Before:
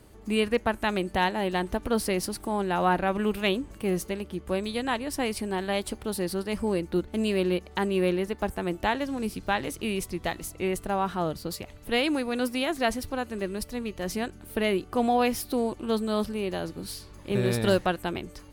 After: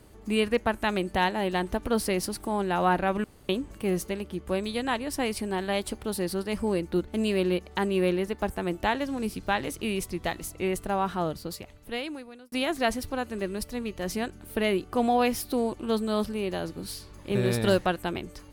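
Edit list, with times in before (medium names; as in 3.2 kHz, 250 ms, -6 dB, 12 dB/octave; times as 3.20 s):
3.24–3.49 s: room tone
11.18–12.52 s: fade out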